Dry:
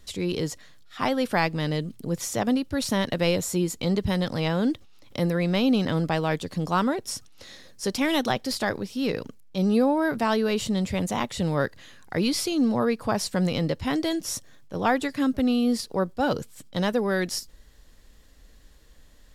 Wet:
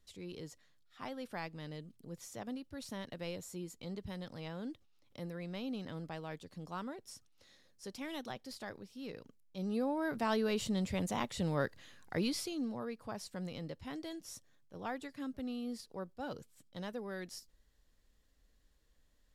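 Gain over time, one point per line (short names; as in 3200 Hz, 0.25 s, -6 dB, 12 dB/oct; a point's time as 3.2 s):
9.23 s -19 dB
10.35 s -9 dB
12.17 s -9 dB
12.8 s -18 dB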